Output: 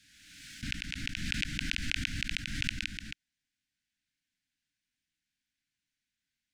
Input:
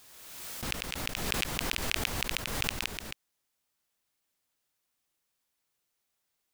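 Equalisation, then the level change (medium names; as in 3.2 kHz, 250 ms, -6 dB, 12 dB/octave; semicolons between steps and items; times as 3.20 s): Chebyshev band-stop 300–1500 Hz, order 5; distance through air 88 m; +1.0 dB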